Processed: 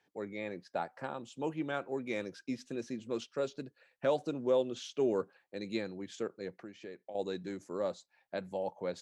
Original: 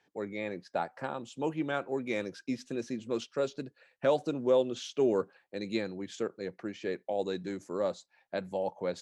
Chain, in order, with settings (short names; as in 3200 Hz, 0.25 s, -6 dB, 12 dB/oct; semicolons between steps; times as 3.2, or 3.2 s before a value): 6.55–7.15 compressor 2.5:1, threshold -44 dBFS, peak gain reduction 10 dB; gain -3.5 dB